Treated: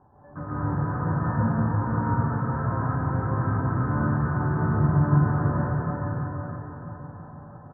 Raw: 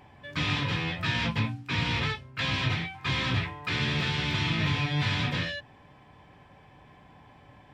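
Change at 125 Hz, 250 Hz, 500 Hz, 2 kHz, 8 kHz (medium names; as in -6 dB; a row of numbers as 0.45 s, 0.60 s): +7.5 dB, +7.5 dB, +7.0 dB, -6.5 dB, under -30 dB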